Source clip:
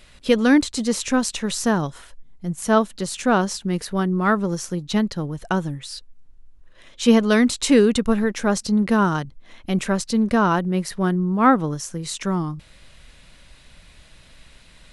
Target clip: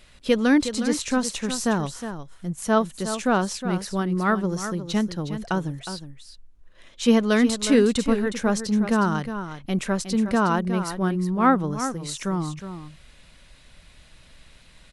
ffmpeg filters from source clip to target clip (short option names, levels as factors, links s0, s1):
-af "aecho=1:1:363:0.316,volume=0.708"